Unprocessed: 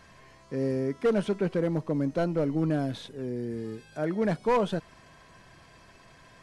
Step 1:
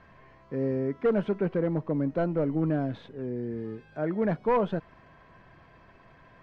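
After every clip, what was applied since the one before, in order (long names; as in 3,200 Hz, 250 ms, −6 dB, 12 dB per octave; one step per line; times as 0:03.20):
low-pass filter 2,100 Hz 12 dB per octave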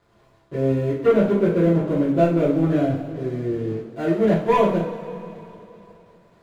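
running median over 25 samples
dead-zone distortion −55 dBFS
coupled-rooms reverb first 0.43 s, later 3.3 s, from −18 dB, DRR −9 dB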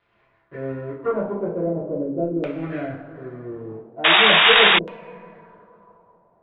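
auto-filter low-pass saw down 0.41 Hz 370–2,800 Hz
sound drawn into the spectrogram noise, 0:04.04–0:04.79, 640–3,800 Hz −10 dBFS
tilt shelving filter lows −4 dB, about 670 Hz
level −7 dB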